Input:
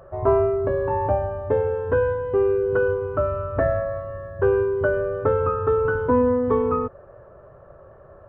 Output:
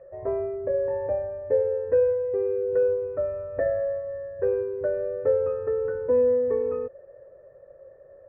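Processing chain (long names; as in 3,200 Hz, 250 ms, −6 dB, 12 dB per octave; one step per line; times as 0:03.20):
formant resonators in series e
level +4 dB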